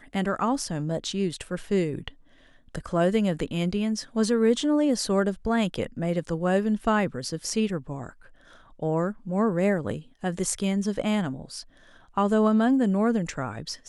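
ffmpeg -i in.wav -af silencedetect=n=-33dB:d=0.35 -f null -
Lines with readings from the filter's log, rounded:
silence_start: 2.08
silence_end: 2.75 | silence_duration: 0.67
silence_start: 8.09
silence_end: 8.82 | silence_duration: 0.73
silence_start: 11.61
silence_end: 12.17 | silence_duration: 0.56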